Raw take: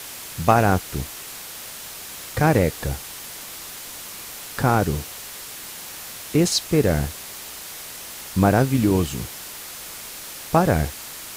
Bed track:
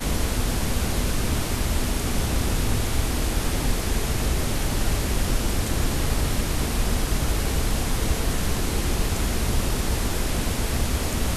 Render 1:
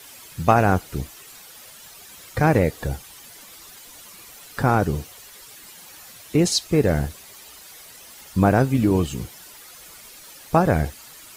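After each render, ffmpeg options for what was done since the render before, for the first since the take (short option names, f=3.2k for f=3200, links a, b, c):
-af "afftdn=nr=11:nf=-37"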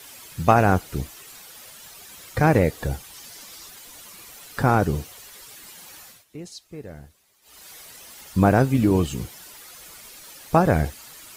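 -filter_complex "[0:a]asettb=1/sr,asplit=3[a][b][c];[a]atrim=end=3.144[d];[b]atrim=start=3.14:end=3.68,asetpts=PTS-STARTPTS,afade=t=in:d=0.004:c=qsin,afade=t=out:st=0.536:d=0.004:c=qsin,equalizer=f=5.2k:w=1.5:g=5[e];[c]atrim=start=3.676[f];[d][e]acrossfade=d=0.004:c1=hsin:c2=qsin[g];[g][f]acrossfade=d=0.004:c1=qsin:c2=hsin,asplit=3[h][i][j];[h]atrim=end=6.25,asetpts=PTS-STARTPTS,afade=t=out:st=5.92:d=0.33:c=qsin:silence=0.105925[k];[i]atrim=start=6.25:end=7.42,asetpts=PTS-STARTPTS,volume=-19.5dB[l];[j]atrim=start=7.42,asetpts=PTS-STARTPTS,afade=t=in:d=0.33:c=qsin:silence=0.105925[m];[k][l][m]concat=n=3:v=0:a=1"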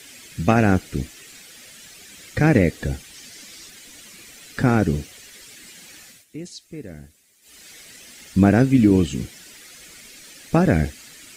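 -filter_complex "[0:a]acrossover=split=6300[a][b];[b]acompressor=threshold=-52dB:ratio=4:attack=1:release=60[c];[a][c]amix=inputs=2:normalize=0,equalizer=f=250:t=o:w=1:g=7,equalizer=f=1k:t=o:w=1:g=-10,equalizer=f=2k:t=o:w=1:g=6,equalizer=f=8k:t=o:w=1:g=7"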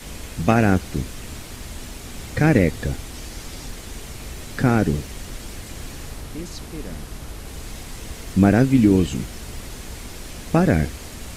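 -filter_complex "[1:a]volume=-11.5dB[a];[0:a][a]amix=inputs=2:normalize=0"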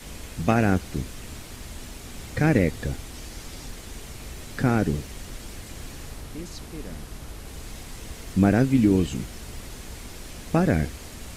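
-af "volume=-4dB"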